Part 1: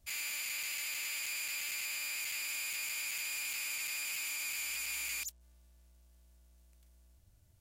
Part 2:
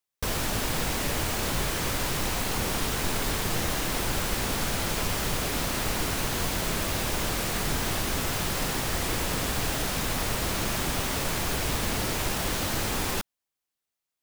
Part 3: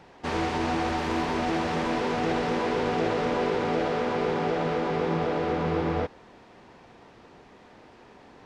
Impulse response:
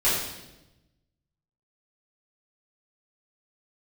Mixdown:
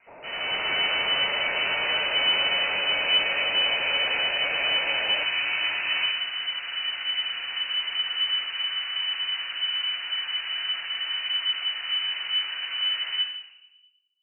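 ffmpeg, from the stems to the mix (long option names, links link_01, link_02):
-filter_complex "[0:a]volume=-2.5dB[link_01];[1:a]lowpass=frequency=1500:width=0.5412,lowpass=frequency=1500:width=1.3066,asoftclip=type=tanh:threshold=-25.5dB,volume=-11.5dB,asplit=2[link_02][link_03];[link_03]volume=-11.5dB[link_04];[2:a]highpass=240,acompressor=threshold=-34dB:ratio=2.5,volume=-10.5dB,asplit=2[link_05][link_06];[link_06]volume=-4.5dB[link_07];[3:a]atrim=start_sample=2205[link_08];[link_04][link_07]amix=inputs=2:normalize=0[link_09];[link_09][link_08]afir=irnorm=-1:irlink=0[link_10];[link_01][link_02][link_05][link_10]amix=inputs=4:normalize=0,equalizer=frequency=140:width=0.34:gain=-11.5,dynaudnorm=framelen=100:gausssize=9:maxgain=9dB,lowpass=frequency=2600:width_type=q:width=0.5098,lowpass=frequency=2600:width_type=q:width=0.6013,lowpass=frequency=2600:width_type=q:width=0.9,lowpass=frequency=2600:width_type=q:width=2.563,afreqshift=-3000"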